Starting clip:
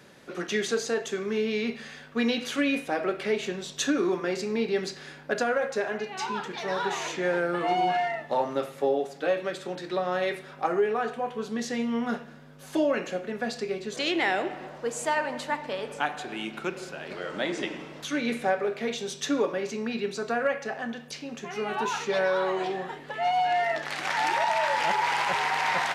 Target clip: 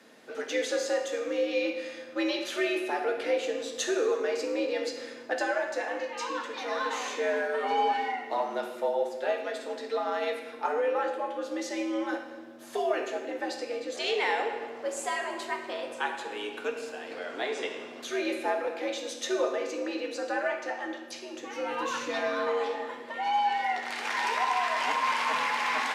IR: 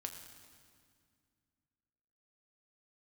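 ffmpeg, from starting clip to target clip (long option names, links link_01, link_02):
-filter_complex "[0:a]asettb=1/sr,asplit=3[link_01][link_02][link_03];[link_01]atrim=end=21.364[link_04];[link_02]atrim=start=21.36:end=22.47,asetpts=PTS-STARTPTS,afade=type=in:duration=0.004:curve=qsin,afade=type=out:start_time=1.106:duration=0.004:curve=qsin,asubboost=boost=11:cutoff=210[link_05];[link_03]atrim=start=22.466[link_06];[link_04][link_05]acrossfade=duration=0.004:curve1=hsin:curve2=qsin[link_07];[link_07][link_06]acrossfade=duration=0.004:curve1=qsin:curve2=hsin,afreqshift=89[link_08];[1:a]atrim=start_sample=2205,asetrate=74970,aresample=44100[link_09];[link_08][link_09]afir=irnorm=-1:irlink=0,volume=5dB"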